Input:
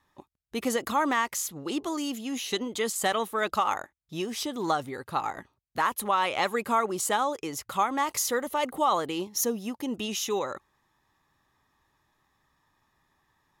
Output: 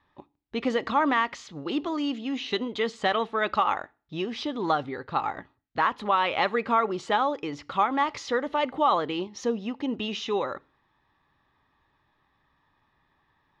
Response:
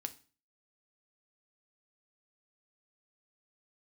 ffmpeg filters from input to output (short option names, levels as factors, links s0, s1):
-filter_complex "[0:a]lowpass=f=4100:w=0.5412,lowpass=f=4100:w=1.3066,asplit=2[s0][s1];[1:a]atrim=start_sample=2205[s2];[s1][s2]afir=irnorm=-1:irlink=0,volume=0.531[s3];[s0][s3]amix=inputs=2:normalize=0,volume=0.891"